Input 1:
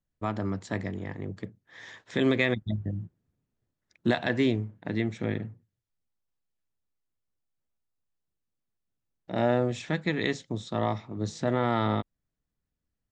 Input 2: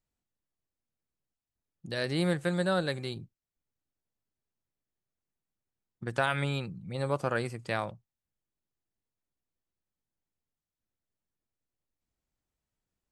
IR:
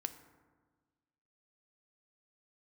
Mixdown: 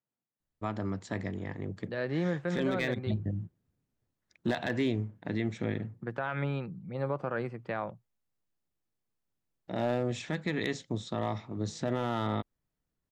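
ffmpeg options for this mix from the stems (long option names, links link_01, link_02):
-filter_complex "[0:a]volume=16.5dB,asoftclip=hard,volume=-16.5dB,adelay=400,volume=-4dB[link_01];[1:a]lowpass=1800,acontrast=56,highpass=frequency=120:width=0.5412,highpass=frequency=120:width=1.3066,volume=-9dB[link_02];[link_01][link_02]amix=inputs=2:normalize=0,dynaudnorm=framelen=480:gausssize=5:maxgain=3dB,alimiter=limit=-21.5dB:level=0:latency=1:release=60"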